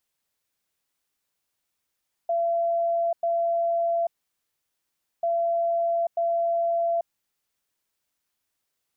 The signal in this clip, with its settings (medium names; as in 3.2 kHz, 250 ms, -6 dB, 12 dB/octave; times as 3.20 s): beep pattern sine 678 Hz, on 0.84 s, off 0.10 s, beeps 2, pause 1.16 s, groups 2, -21 dBFS